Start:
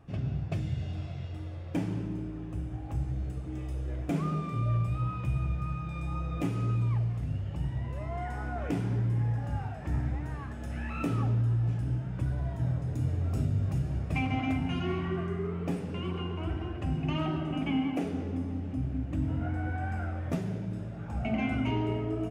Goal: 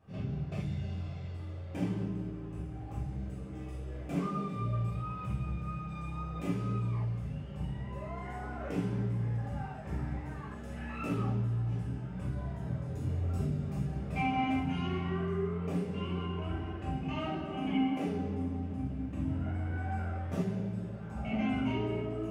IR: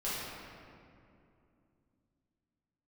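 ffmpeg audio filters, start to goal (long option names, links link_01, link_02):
-filter_complex "[0:a]highpass=57[link_01];[1:a]atrim=start_sample=2205,atrim=end_sample=3969[link_02];[link_01][link_02]afir=irnorm=-1:irlink=0,volume=-4.5dB"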